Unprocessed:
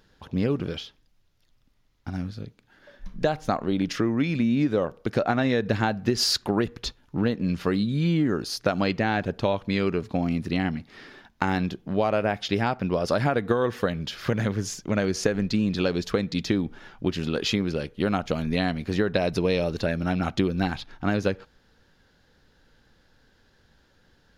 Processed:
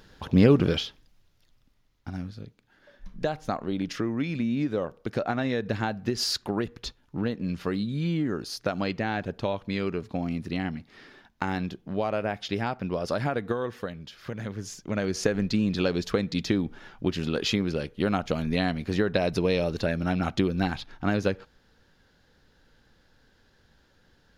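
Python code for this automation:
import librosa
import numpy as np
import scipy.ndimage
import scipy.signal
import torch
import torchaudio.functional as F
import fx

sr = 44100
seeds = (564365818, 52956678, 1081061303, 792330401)

y = fx.gain(x, sr, db=fx.line((0.72, 7.0), (2.29, -4.5), (13.42, -4.5), (14.15, -12.0), (15.29, -1.0)))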